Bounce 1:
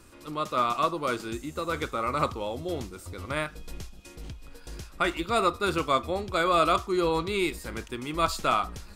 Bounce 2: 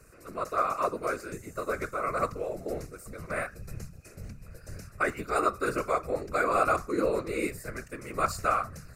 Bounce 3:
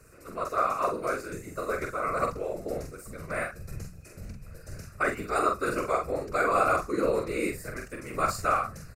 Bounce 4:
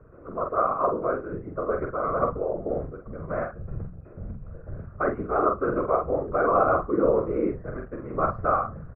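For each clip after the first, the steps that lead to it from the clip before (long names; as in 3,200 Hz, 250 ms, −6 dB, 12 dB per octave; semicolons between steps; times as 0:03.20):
phaser with its sweep stopped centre 900 Hz, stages 6; random phases in short frames
double-tracking delay 45 ms −5 dB
low-pass filter 1,200 Hz 24 dB per octave; level +5 dB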